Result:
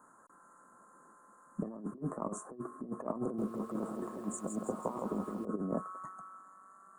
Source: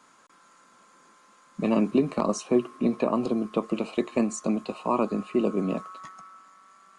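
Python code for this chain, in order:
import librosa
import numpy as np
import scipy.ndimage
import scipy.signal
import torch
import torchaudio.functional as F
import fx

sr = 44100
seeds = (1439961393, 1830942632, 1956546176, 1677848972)

y = scipy.signal.sosfilt(scipy.signal.cheby2(4, 40, [2300.0, 5400.0], 'bandstop', fs=sr, output='sos'), x)
y = fx.over_compress(y, sr, threshold_db=-29.0, ratio=-0.5)
y = fx.echo_crushed(y, sr, ms=163, feedback_pct=55, bits=9, wet_db=-5.0, at=(3.22, 5.45))
y = y * librosa.db_to_amplitude(-7.5)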